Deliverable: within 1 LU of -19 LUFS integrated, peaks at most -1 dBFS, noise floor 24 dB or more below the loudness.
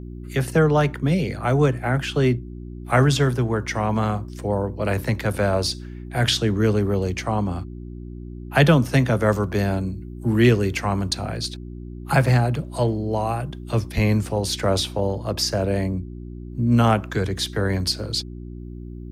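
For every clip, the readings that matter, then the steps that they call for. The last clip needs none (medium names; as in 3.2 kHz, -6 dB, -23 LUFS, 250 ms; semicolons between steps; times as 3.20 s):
hum 60 Hz; highest harmonic 360 Hz; hum level -34 dBFS; loudness -22.0 LUFS; peak level -3.0 dBFS; loudness target -19.0 LUFS
-> de-hum 60 Hz, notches 6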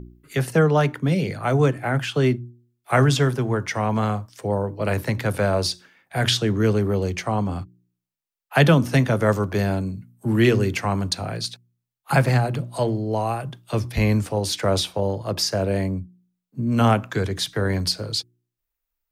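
hum not found; loudness -22.5 LUFS; peak level -3.5 dBFS; loudness target -19.0 LUFS
-> trim +3.5 dB; peak limiter -1 dBFS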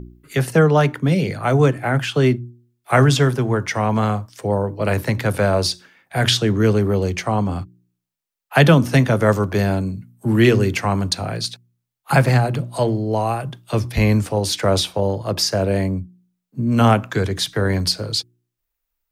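loudness -19.0 LUFS; peak level -1.0 dBFS; noise floor -80 dBFS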